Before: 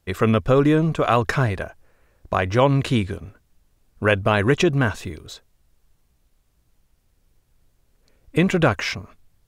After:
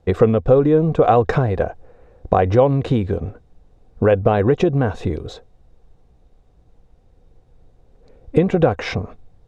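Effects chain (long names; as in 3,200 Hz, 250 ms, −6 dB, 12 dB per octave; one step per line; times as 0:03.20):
low-pass filter 7,000 Hz 12 dB per octave
tilt shelving filter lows +7 dB, about 1,200 Hz
downward compressor 6 to 1, threshold −19 dBFS, peak gain reduction 11.5 dB
hollow resonant body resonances 490/740/3,700 Hz, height 10 dB, ringing for 30 ms
level +4 dB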